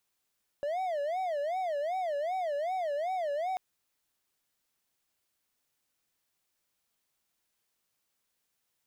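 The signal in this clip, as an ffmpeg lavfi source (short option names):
-f lavfi -i "aevalsrc='0.0422*(1-4*abs(mod((663*t-95/(2*PI*2.6)*sin(2*PI*2.6*t))+0.25,1)-0.5))':d=2.94:s=44100"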